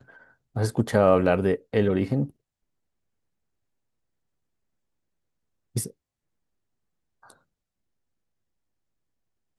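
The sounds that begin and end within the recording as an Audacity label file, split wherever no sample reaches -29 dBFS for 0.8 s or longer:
5.760000	5.860000	sound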